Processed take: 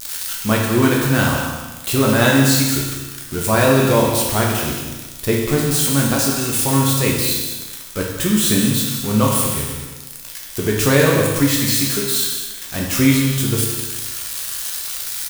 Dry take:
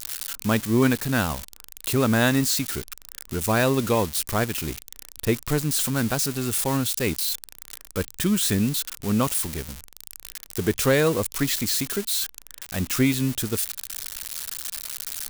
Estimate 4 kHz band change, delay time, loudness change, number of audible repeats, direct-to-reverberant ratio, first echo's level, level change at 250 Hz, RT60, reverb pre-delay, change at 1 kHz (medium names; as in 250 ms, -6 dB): +7.5 dB, 192 ms, +7.0 dB, 1, -3.0 dB, -9.5 dB, +6.5 dB, 1.2 s, 7 ms, +7.5 dB